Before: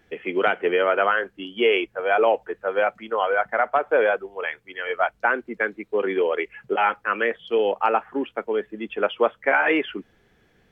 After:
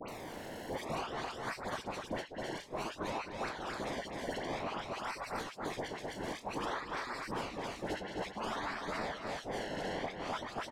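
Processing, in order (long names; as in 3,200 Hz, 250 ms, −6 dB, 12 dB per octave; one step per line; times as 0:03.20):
played backwards from end to start
brickwall limiter −18.5 dBFS, peak gain reduction 11.5 dB
gate on every frequency bin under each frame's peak −25 dB weak
sample-and-hold swept by an LFO 25×, swing 100% 0.54 Hz
on a send: single-tap delay 254 ms −6.5 dB
on the sum: treble cut that deepens with the level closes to 1,200 Hz, closed at −36.5 dBFS
low-shelf EQ 260 Hz −10 dB
all-pass dispersion highs, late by 86 ms, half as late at 1,800 Hz
multiband upward and downward compressor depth 100%
level +10.5 dB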